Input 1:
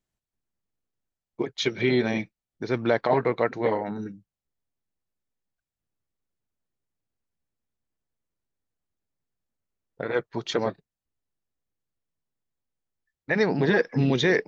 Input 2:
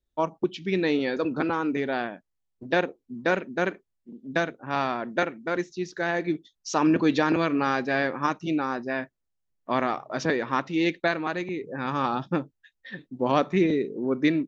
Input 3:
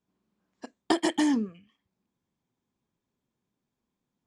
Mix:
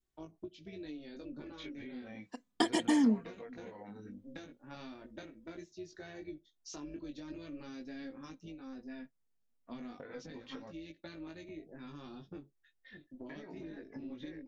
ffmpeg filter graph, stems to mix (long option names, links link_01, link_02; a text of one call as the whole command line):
ffmpeg -i stem1.wav -i stem2.wav -i stem3.wav -filter_complex "[0:a]acrossover=split=2900[link_01][link_02];[link_02]acompressor=threshold=-48dB:ratio=4:attack=1:release=60[link_03];[link_01][link_03]amix=inputs=2:normalize=0,alimiter=limit=-17.5dB:level=0:latency=1:release=225,acompressor=threshold=-38dB:ratio=2.5,volume=2.5dB[link_04];[1:a]acrossover=split=370|3000[link_05][link_06][link_07];[link_06]acompressor=threshold=-46dB:ratio=2.5[link_08];[link_05][link_08][link_07]amix=inputs=3:normalize=0,tremolo=f=270:d=0.462,volume=-3dB[link_09];[2:a]aphaser=in_gain=1:out_gain=1:delay=1.1:decay=0.29:speed=0.8:type=triangular,adelay=1700,volume=-0.5dB[link_10];[link_04][link_09]amix=inputs=2:normalize=0,flanger=delay=18.5:depth=2.2:speed=0.36,acompressor=threshold=-39dB:ratio=10,volume=0dB[link_11];[link_10][link_11]amix=inputs=2:normalize=0,adynamicequalizer=threshold=0.002:dfrequency=920:dqfactor=1.2:tfrequency=920:tqfactor=1.2:attack=5:release=100:ratio=0.375:range=2:mode=cutabove:tftype=bell,flanger=delay=2.6:depth=1.8:regen=44:speed=0.16:shape=triangular" out.wav